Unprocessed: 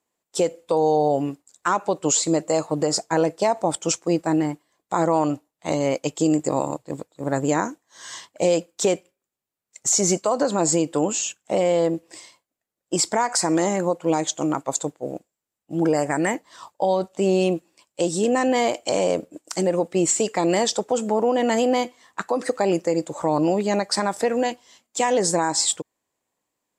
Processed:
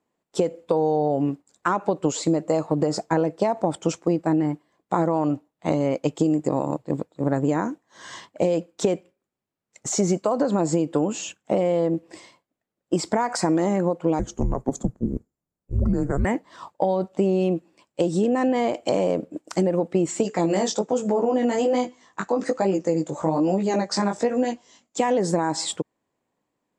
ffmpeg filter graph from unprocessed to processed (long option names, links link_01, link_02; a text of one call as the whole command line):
ffmpeg -i in.wav -filter_complex "[0:a]asettb=1/sr,asplit=3[link_01][link_02][link_03];[link_01]atrim=end=14.194[link_04];[link_02]atrim=start=14.19:end=16.25,asetpts=PTS-STARTPTS,afade=type=in:duration=0.004:curve=qsin,afade=type=out:start_time=2.056:duration=0.004:curve=qsin,equalizer=frequency=3300:width=0.93:gain=-15,afreqshift=-270[link_05];[link_03]atrim=start=16.246[link_06];[link_04][link_05]acrossfade=duration=0.004:curve1=hsin:curve2=qsin[link_07];[link_07][link_06]acrossfade=duration=0.004:curve1=qsin:curve2=hsin,asettb=1/sr,asplit=3[link_08][link_09][link_10];[link_08]atrim=end=20.234[link_11];[link_09]atrim=start=20.23:end=24.98,asetpts=PTS-STARTPTS,afade=type=in:duration=0.004:curve=qsin,afade=type=out:start_time=4.746:duration=0.004:curve=qsin,flanger=delay=15.5:depth=5:speed=1.2,lowpass=frequency=6800:width_type=q:width=3.4[link_12];[link_10]atrim=start=24.976[link_13];[link_11][link_12]acrossfade=duration=0.004:curve1=hsin:curve2=qsin[link_14];[link_14][link_13]acrossfade=duration=0.004:curve1=qsin:curve2=hsin,lowpass=frequency=2100:poles=1,equalizer=frequency=190:width_type=o:width=2.1:gain=5.5,acompressor=threshold=-20dB:ratio=6,volume=2.5dB" out.wav